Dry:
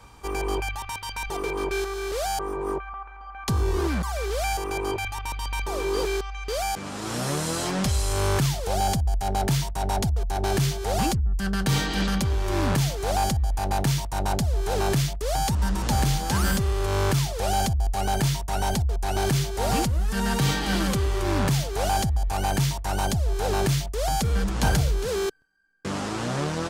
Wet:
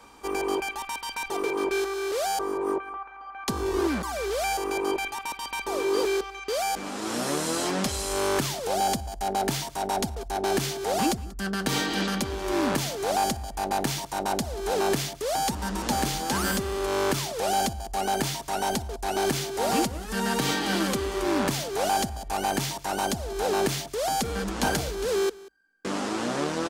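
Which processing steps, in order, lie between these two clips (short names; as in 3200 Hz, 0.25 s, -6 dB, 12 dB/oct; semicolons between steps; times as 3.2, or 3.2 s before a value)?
resonant low shelf 180 Hz -10.5 dB, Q 1.5; notches 50/100 Hz; echo 0.187 s -21 dB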